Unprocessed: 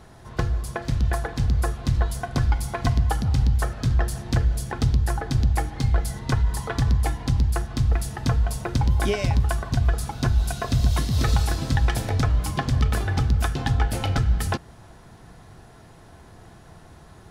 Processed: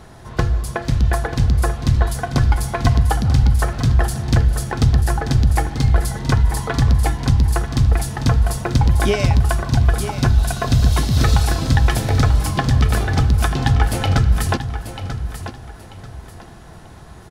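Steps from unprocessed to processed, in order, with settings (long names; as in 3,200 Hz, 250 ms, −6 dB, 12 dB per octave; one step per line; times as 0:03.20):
repeating echo 939 ms, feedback 28%, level −10.5 dB
level +6 dB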